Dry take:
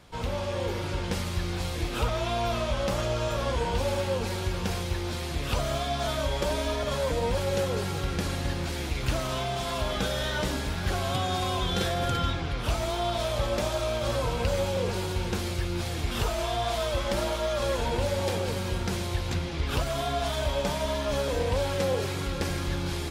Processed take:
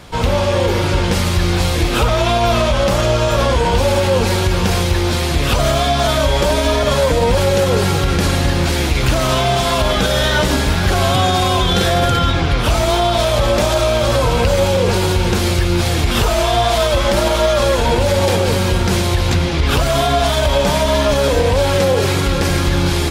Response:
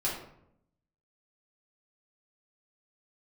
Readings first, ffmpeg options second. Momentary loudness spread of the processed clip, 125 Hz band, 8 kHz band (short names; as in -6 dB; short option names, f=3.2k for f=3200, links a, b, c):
2 LU, +14.0 dB, +14.0 dB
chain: -af "alimiter=level_in=20dB:limit=-1dB:release=50:level=0:latency=1,volume=-4.5dB"